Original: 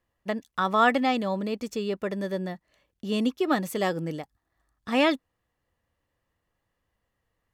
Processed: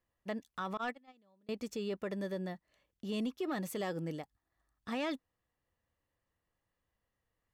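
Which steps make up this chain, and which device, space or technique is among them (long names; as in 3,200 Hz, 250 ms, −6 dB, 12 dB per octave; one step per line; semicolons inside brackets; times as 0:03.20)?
0:00.77–0:01.49: noise gate −18 dBFS, range −34 dB
soft clipper into limiter (soft clipping −15 dBFS, distortion −19 dB; brickwall limiter −22.5 dBFS, peak gain reduction 7 dB)
level −7 dB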